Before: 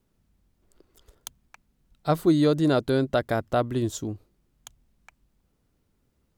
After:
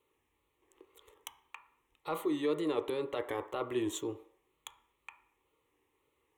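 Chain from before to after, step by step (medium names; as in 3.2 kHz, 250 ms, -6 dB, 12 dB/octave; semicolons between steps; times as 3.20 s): high-pass 200 Hz 6 dB/octave; peak limiter -20 dBFS, peak gain reduction 10 dB; reverse; compression, threshold -28 dBFS, peak gain reduction 5 dB; reverse; overdrive pedal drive 11 dB, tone 4 kHz, clips at -12 dBFS; static phaser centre 1 kHz, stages 8; wow and flutter 86 cents; on a send: reverberation RT60 0.65 s, pre-delay 3 ms, DRR 7 dB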